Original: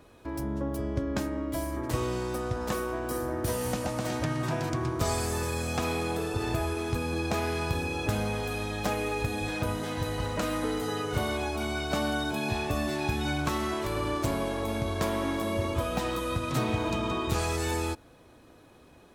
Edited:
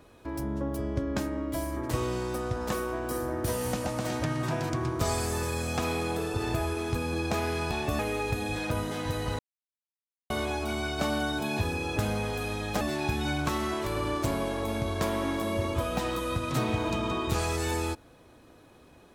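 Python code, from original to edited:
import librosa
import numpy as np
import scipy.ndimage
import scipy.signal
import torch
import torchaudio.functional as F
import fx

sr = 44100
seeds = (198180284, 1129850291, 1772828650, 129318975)

y = fx.edit(x, sr, fx.swap(start_s=7.71, length_s=1.2, other_s=12.53, other_length_s=0.28),
    fx.silence(start_s=10.31, length_s=0.91), tone=tone)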